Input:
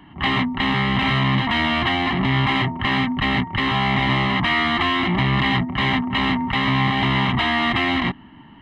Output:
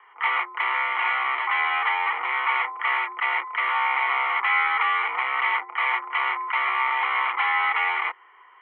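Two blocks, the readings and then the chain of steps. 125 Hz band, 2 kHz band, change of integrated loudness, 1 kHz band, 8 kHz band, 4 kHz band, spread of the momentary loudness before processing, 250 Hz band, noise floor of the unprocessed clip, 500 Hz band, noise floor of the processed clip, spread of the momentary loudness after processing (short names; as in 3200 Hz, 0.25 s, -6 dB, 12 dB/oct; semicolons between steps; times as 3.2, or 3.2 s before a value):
under -40 dB, -1.0 dB, -3.5 dB, -0.5 dB, n/a, -11.5 dB, 2 LU, under -35 dB, -45 dBFS, -12.5 dB, -52 dBFS, 3 LU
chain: mistuned SSB +110 Hz 600–2400 Hz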